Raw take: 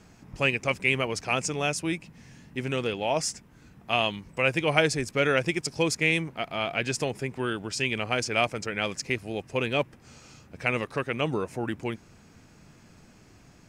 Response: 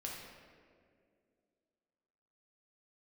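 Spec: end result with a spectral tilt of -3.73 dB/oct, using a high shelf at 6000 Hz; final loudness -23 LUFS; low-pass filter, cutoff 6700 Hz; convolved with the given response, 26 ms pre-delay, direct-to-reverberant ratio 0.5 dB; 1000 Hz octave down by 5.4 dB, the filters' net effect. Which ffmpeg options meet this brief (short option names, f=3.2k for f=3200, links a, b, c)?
-filter_complex "[0:a]lowpass=6.7k,equalizer=f=1k:t=o:g=-8,highshelf=f=6k:g=-5.5,asplit=2[a][b];[1:a]atrim=start_sample=2205,adelay=26[c];[b][c]afir=irnorm=-1:irlink=0,volume=0dB[d];[a][d]amix=inputs=2:normalize=0,volume=4dB"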